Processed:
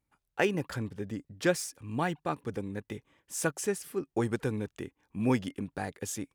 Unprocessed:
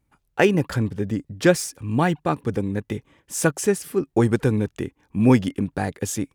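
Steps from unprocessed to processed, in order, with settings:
low-shelf EQ 370 Hz −5.5 dB
level −8 dB

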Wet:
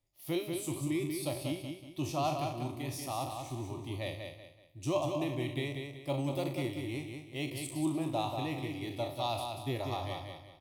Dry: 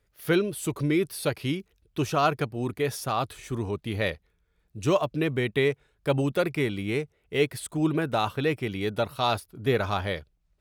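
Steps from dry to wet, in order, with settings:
peak hold with a decay on every bin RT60 0.46 s
phaser with its sweep stopped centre 300 Hz, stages 8
repeating echo 188 ms, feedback 34%, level −5.5 dB
level −8 dB

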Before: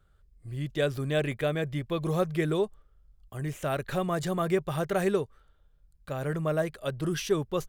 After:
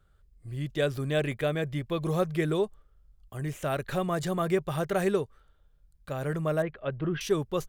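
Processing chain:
0:06.62–0:07.21: low-pass filter 2,800 Hz 24 dB per octave

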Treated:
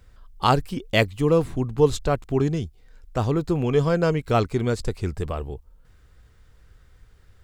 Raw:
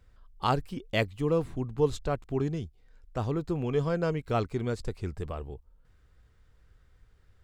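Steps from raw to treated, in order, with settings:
high-shelf EQ 4,800 Hz +4.5 dB
level +7.5 dB

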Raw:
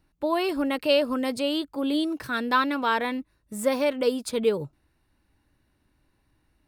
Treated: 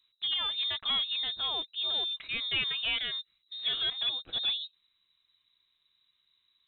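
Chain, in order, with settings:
gain into a clipping stage and back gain 20 dB
voice inversion scrambler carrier 3,900 Hz
level −6 dB

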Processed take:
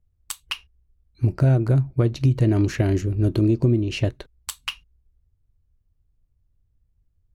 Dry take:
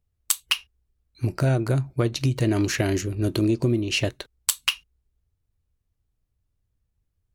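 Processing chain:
spectral tilt −2.5 dB per octave
level −2.5 dB

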